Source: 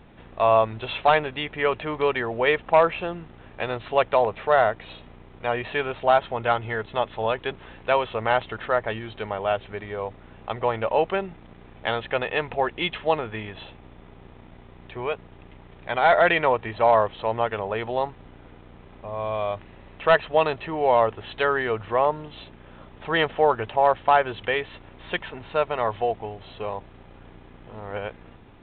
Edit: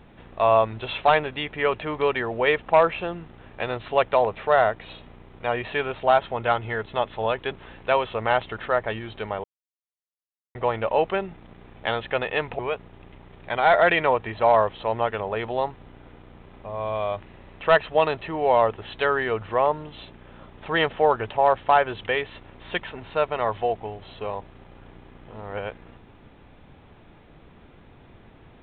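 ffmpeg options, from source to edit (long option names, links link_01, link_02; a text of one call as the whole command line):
ffmpeg -i in.wav -filter_complex "[0:a]asplit=4[link_01][link_02][link_03][link_04];[link_01]atrim=end=9.44,asetpts=PTS-STARTPTS,afade=type=out:start_time=9.436:duration=0.004:curve=hsin[link_05];[link_02]atrim=start=9.44:end=10.55,asetpts=PTS-STARTPTS,volume=0[link_06];[link_03]atrim=start=10.55:end=12.592,asetpts=PTS-STARTPTS,afade=type=in:duration=0.004:curve=hsin[link_07];[link_04]atrim=start=14.978[link_08];[link_05][link_06][link_07]concat=n=3:v=0:a=1[link_09];[link_09][link_08]acrossfade=duration=0.004:curve1=hsin:curve2=hsin" out.wav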